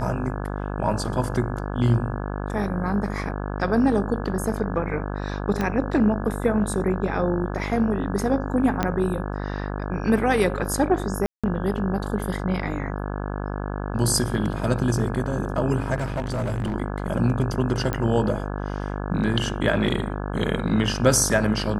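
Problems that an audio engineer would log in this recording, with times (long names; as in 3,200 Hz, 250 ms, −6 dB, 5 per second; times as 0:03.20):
mains buzz 50 Hz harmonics 34 −29 dBFS
0:05.61: click −12 dBFS
0:08.83: click −8 dBFS
0:11.26–0:11.44: drop-out 176 ms
0:15.96–0:16.74: clipping −22 dBFS
0:17.93: click −11 dBFS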